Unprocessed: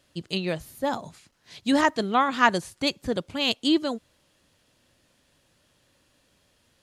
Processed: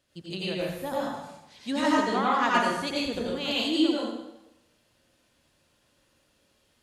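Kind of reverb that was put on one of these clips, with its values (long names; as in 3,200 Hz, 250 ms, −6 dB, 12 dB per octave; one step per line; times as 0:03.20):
dense smooth reverb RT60 0.93 s, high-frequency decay 0.85×, pre-delay 75 ms, DRR −6.5 dB
level −9 dB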